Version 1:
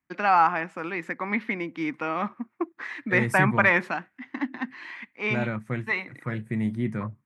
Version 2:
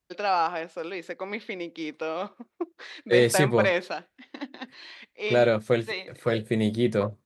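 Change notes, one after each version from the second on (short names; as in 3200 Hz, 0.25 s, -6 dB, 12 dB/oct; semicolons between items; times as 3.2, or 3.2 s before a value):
second voice +11.0 dB; master: add graphic EQ 125/250/500/1000/2000/4000 Hz -11/-9/+9/-8/-10/+12 dB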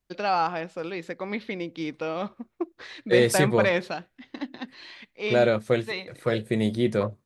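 first voice: remove HPF 290 Hz 12 dB/oct; master: remove HPF 53 Hz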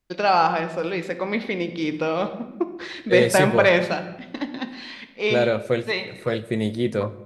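first voice +5.0 dB; reverb: on, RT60 1.0 s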